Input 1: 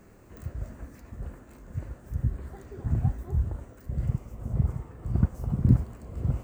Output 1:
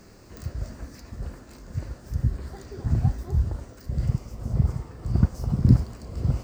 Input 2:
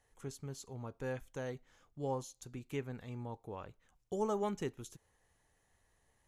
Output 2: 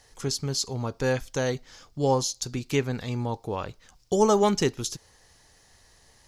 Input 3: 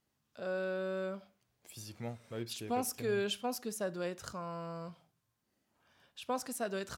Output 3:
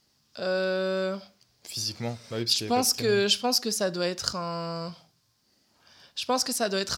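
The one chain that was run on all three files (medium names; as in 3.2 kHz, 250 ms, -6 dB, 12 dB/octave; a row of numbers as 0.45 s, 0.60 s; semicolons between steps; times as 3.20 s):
peaking EQ 4.9 kHz +15 dB 0.75 oct; normalise loudness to -27 LUFS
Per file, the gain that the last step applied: +3.5 dB, +14.0 dB, +9.0 dB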